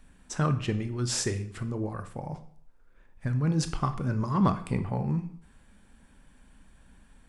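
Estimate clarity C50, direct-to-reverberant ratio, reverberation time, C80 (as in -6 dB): 12.5 dB, 9.0 dB, 0.60 s, 16.5 dB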